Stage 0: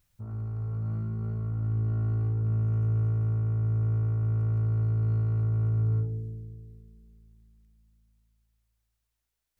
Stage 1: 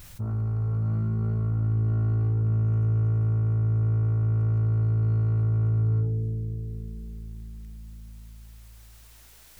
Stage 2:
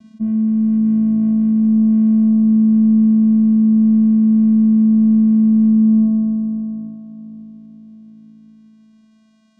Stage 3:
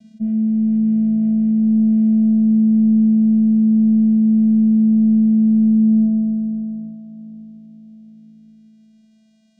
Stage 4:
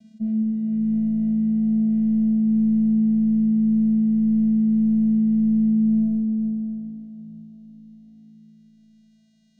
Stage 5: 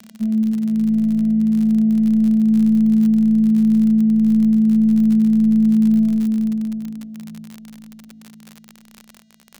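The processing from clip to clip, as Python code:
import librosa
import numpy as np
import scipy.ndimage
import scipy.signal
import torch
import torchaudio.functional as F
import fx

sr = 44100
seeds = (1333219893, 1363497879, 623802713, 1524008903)

y1 = fx.env_flatten(x, sr, amount_pct=50)
y1 = y1 * librosa.db_to_amplitude(2.0)
y2 = fx.low_shelf(y1, sr, hz=360.0, db=7.5)
y2 = fx.vocoder(y2, sr, bands=4, carrier='square', carrier_hz=219.0)
y2 = y2 * librosa.db_to_amplitude(5.5)
y3 = fx.fixed_phaser(y2, sr, hz=310.0, stages=6)
y4 = fx.rev_freeverb(y3, sr, rt60_s=3.7, hf_ratio=0.8, predelay_ms=110, drr_db=3.5)
y4 = y4 * librosa.db_to_amplitude(-4.0)
y5 = fx.dmg_crackle(y4, sr, seeds[0], per_s=57.0, level_db=-29.0)
y5 = y5 * librosa.db_to_amplitude(4.5)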